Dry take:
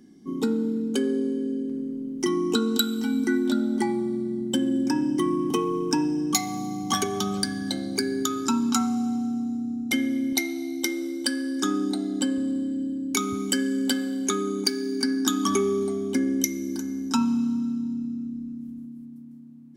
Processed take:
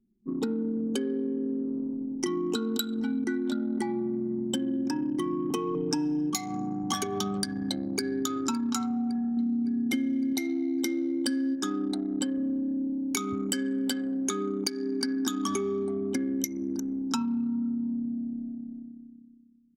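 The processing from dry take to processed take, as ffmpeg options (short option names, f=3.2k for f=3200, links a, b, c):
-filter_complex "[0:a]asettb=1/sr,asplit=3[a][b][c];[a]atrim=end=5.744[d];[b]atrim=start=5.74:end=6.3,asetpts=PTS-STARTPTS,afade=t=in:d=0.004:c=qsin,afade=t=out:st=0.556:d=0.004:c=qsin,aecho=1:1:6.8:0.95,atrim=end_sample=24696[e];[c]atrim=start=6.296[f];[d][e]acrossfade=d=0.004:c1=hsin:c2=qsin[g];[g][f]acrossfade=d=0.004:c1=qsin:c2=hsin,asplit=2[h][i];[i]afade=t=in:st=7.46:d=0.01,afade=t=out:st=8.24:d=0.01,aecho=0:1:560|1120|1680|2240|2800|3360|3920|4480|5040:0.211349|0.147944|0.103561|0.0724927|0.0507449|0.0355214|0.024865|0.0174055|0.0121838[j];[h][j]amix=inputs=2:normalize=0,asplit=3[k][l][m];[k]afade=t=out:st=9.37:d=0.02[n];[l]equalizer=f=240:w=0.97:g=9.5,afade=t=in:st=9.37:d=0.02,afade=t=out:st=11.54:d=0.02[o];[m]afade=t=in:st=11.54:d=0.02[p];[n][o][p]amix=inputs=3:normalize=0,anlmdn=25.1,acompressor=threshold=-26dB:ratio=6"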